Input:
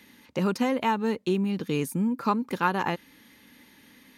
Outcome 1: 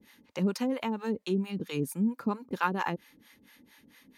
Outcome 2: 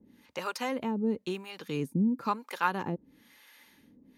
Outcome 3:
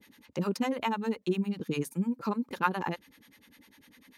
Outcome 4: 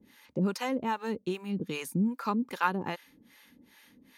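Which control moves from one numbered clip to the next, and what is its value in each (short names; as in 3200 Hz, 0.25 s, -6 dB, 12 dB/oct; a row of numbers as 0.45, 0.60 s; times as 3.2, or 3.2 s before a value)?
harmonic tremolo, rate: 4.4, 1, 10, 2.5 Hz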